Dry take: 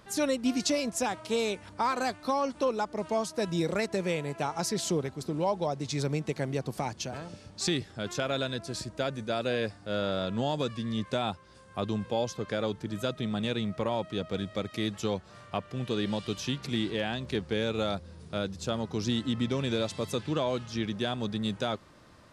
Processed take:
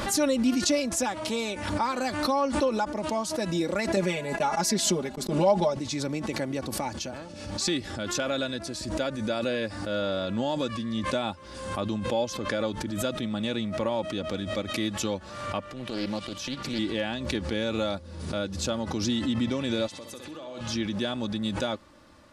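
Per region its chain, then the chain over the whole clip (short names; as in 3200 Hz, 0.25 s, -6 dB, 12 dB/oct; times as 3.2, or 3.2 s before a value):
3.96–5.77 gate -41 dBFS, range -26 dB + comb 4.9 ms, depth 99%
15.68–16.79 HPF 67 Hz + transient shaper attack -12 dB, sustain -4 dB + Doppler distortion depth 0.34 ms
19.87–20.61 low shelf 150 Hz -11 dB + compressor 4:1, threshold -41 dBFS + flutter echo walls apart 11 m, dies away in 0.55 s
whole clip: comb 3.5 ms, depth 51%; backwards sustainer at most 51 dB/s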